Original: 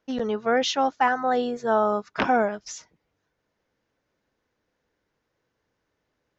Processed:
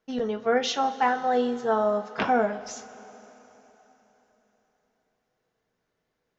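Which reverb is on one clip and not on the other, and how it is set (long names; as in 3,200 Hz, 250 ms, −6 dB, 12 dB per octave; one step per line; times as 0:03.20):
coupled-rooms reverb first 0.2 s, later 3.9 s, from −22 dB, DRR 4.5 dB
level −3.5 dB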